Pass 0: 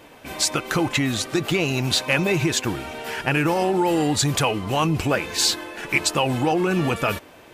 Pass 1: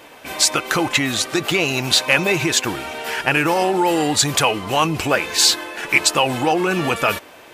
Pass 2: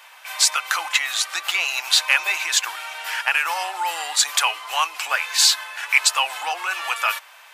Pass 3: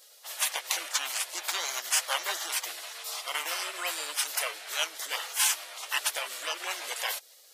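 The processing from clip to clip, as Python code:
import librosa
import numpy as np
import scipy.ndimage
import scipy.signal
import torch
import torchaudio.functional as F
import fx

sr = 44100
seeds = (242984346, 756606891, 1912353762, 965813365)

y1 = fx.low_shelf(x, sr, hz=300.0, db=-10.5)
y1 = F.gain(torch.from_numpy(y1), 6.0).numpy()
y2 = scipy.signal.sosfilt(scipy.signal.butter(4, 890.0, 'highpass', fs=sr, output='sos'), y1)
y2 = F.gain(torch.from_numpy(y2), -1.0).numpy()
y3 = fx.spec_gate(y2, sr, threshold_db=-15, keep='weak')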